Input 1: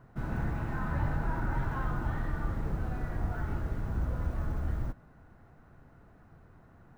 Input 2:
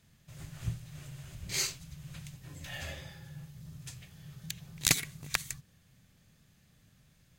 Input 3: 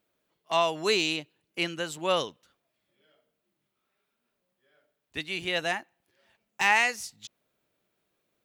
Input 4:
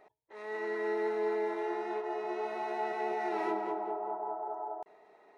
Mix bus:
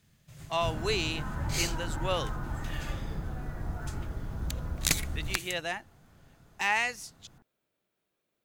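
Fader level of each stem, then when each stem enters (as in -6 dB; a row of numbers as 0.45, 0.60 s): -3.0 dB, -1.0 dB, -5.0 dB, off; 0.45 s, 0.00 s, 0.00 s, off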